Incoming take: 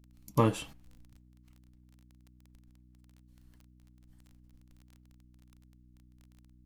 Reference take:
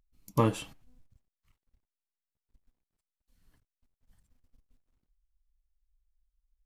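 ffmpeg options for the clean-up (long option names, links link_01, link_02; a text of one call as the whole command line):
ffmpeg -i in.wav -af "adeclick=threshold=4,bandreject=frequency=61.6:width_type=h:width=4,bandreject=frequency=123.2:width_type=h:width=4,bandreject=frequency=184.8:width_type=h:width=4,bandreject=frequency=246.4:width_type=h:width=4,bandreject=frequency=308:width_type=h:width=4" out.wav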